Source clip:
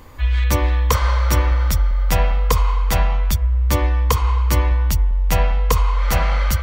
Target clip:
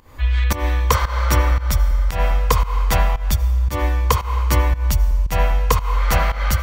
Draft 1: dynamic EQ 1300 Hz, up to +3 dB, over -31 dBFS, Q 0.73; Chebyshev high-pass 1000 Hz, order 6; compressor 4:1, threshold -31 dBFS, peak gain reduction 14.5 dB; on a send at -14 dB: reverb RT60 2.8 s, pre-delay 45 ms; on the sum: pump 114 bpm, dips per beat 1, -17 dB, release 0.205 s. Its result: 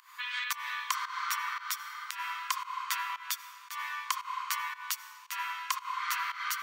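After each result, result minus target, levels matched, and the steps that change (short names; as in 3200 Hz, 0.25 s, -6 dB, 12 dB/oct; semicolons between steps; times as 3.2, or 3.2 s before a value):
compressor: peak gain reduction +14.5 dB; 1000 Hz band +4.5 dB
remove: compressor 4:1, threshold -31 dBFS, peak gain reduction 14.5 dB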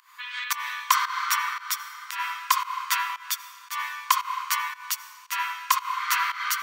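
1000 Hz band +5.5 dB
remove: Chebyshev high-pass 1000 Hz, order 6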